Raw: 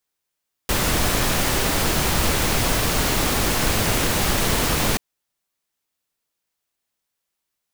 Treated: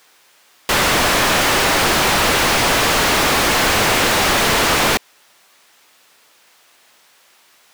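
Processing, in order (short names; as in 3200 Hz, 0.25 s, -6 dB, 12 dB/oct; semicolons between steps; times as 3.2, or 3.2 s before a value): overdrive pedal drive 41 dB, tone 2900 Hz, clips at -6 dBFS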